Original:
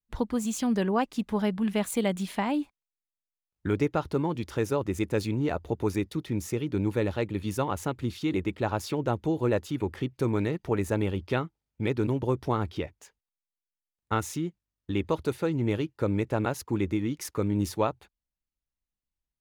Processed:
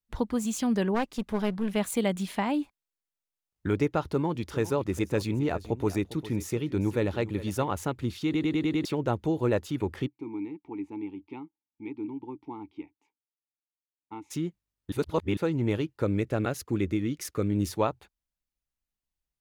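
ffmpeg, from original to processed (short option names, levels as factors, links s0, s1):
-filter_complex "[0:a]asplit=3[s0][s1][s2];[s0]afade=t=out:st=0.94:d=0.02[s3];[s1]aeval=exprs='clip(val(0),-1,0.0224)':c=same,afade=t=in:st=0.94:d=0.02,afade=t=out:st=1.75:d=0.02[s4];[s2]afade=t=in:st=1.75:d=0.02[s5];[s3][s4][s5]amix=inputs=3:normalize=0,asettb=1/sr,asplit=3[s6][s7][s8];[s6]atrim=end=4.084[s9];[s7]atrim=start=4.08:end=7.69,asetpts=PTS-STARTPTS,afade=t=in:d=0.004:c=qsin,afade=t=out:st=3.606:d=0.004:c=qsin,aecho=1:1:403:0.168,atrim=end_sample=159201[s10];[s8]atrim=start=7.686[s11];[s9][s10]acrossfade=d=0.004:c1=hsin:c2=qsin[s12];[s12][s11]acrossfade=d=0.004:c1=qsin:c2=hsin,asplit=3[s13][s14][s15];[s13]afade=t=out:st=10.06:d=0.02[s16];[s14]asplit=3[s17][s18][s19];[s17]bandpass=f=300:t=q:w=8,volume=1[s20];[s18]bandpass=f=870:t=q:w=8,volume=0.501[s21];[s19]bandpass=f=2240:t=q:w=8,volume=0.355[s22];[s20][s21][s22]amix=inputs=3:normalize=0,afade=t=in:st=10.06:d=0.02,afade=t=out:st=14.3:d=0.02[s23];[s15]afade=t=in:st=14.3:d=0.02[s24];[s16][s23][s24]amix=inputs=3:normalize=0,asettb=1/sr,asplit=3[s25][s26][s27];[s25]atrim=end=16.054[s28];[s26]atrim=start=16.05:end=17.72,asetpts=PTS-STARTPTS,afade=t=in:d=0.004:c=qsin,afade=t=out:st=1.666:d=0.004:c=qsin,equalizer=f=920:t=o:w=0.33:g=-11.5[s29];[s27]atrim=start=17.716[s30];[s28][s29]acrossfade=d=0.004:c1=hsin:c2=qsin[s31];[s31][s30]acrossfade=d=0.004:c1=qsin:c2=hsin,asplit=9[s32][s33][s34][s35][s36][s37][s38][s39][s40];[s32]atrim=end=8.352[s41];[s33]atrim=start=8.248:end=8.352[s42];[s34]atrim=start=8.248:end=8.352[s43];[s35]atrim=start=8.248:end=8.352[s44];[s36]atrim=start=8.248:end=8.352[s45];[s37]atrim=start=8.248:end=8.352[s46];[s38]atrim=start=8.848:end=14.922[s47];[s39]atrim=start=14.918:end=15.372,asetpts=PTS-STARTPTS,areverse[s48];[s40]atrim=start=15.368[s49];[s41][s42]acrossfade=d=0.004:c1=hsin:c2=hsin[s50];[s50][s43]acrossfade=d=0.004:c1=hsin:c2=hsin[s51];[s51][s44]acrossfade=d=0.004:c1=hsin:c2=hsin[s52];[s52][s45]acrossfade=d=0.004:c1=hsin:c2=hsin[s53];[s53][s46]acrossfade=d=0.004:c1=hsin:c2=hsin[s54];[s54][s47]acrossfade=d=0.004:c1=hsin:c2=hsin[s55];[s55][s48]acrossfade=d=0.004:c1=hsin:c2=hsin[s56];[s56][s49]acrossfade=d=0.004:c1=hsin:c2=hsin"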